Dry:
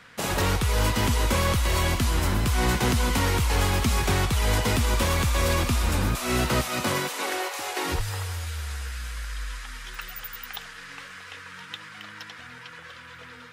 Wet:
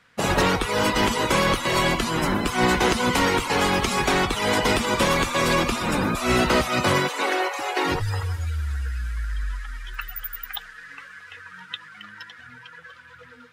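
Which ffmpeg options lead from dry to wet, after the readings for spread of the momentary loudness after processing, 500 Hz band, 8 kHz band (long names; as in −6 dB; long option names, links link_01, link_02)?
19 LU, +6.0 dB, −0.5 dB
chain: -af "afftdn=noise_reduction=15:noise_floor=-35,afftfilt=real='re*lt(hypot(re,im),0.398)':imag='im*lt(hypot(re,im),0.398)':win_size=1024:overlap=0.75,volume=6.5dB"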